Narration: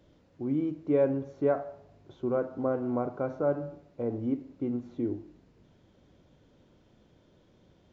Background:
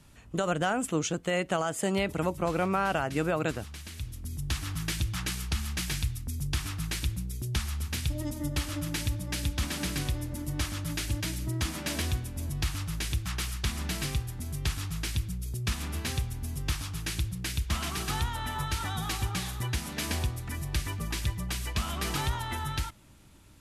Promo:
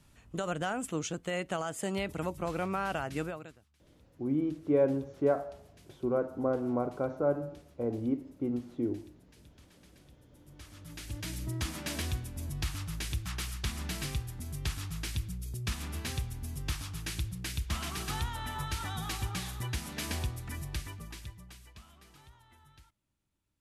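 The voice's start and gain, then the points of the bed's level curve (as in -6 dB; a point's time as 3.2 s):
3.80 s, -1.0 dB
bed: 3.22 s -5.5 dB
3.64 s -29 dB
10.17 s -29 dB
11.36 s -4 dB
20.59 s -4 dB
22.09 s -27 dB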